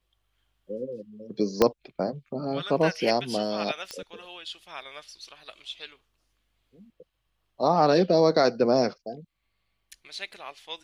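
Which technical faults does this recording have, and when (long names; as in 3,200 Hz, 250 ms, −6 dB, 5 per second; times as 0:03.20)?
0:01.62: click −6 dBFS
0:03.91: click −21 dBFS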